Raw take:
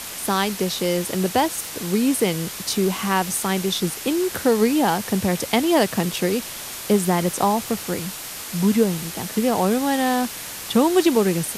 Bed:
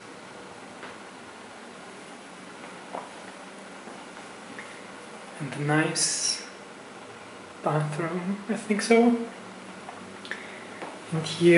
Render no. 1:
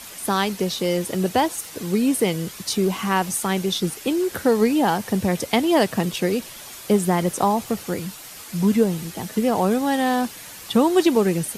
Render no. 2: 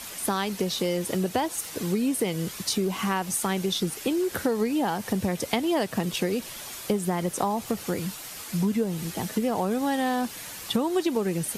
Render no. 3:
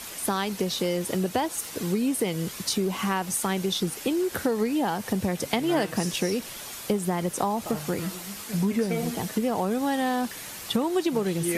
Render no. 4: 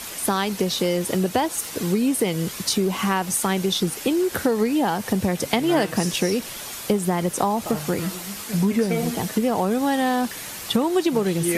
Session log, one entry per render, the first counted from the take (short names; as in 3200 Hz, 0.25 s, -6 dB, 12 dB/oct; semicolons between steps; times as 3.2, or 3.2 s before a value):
denoiser 8 dB, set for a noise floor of -34 dBFS
compressor 4:1, threshold -23 dBFS, peak gain reduction 10 dB
add bed -11.5 dB
gain +4.5 dB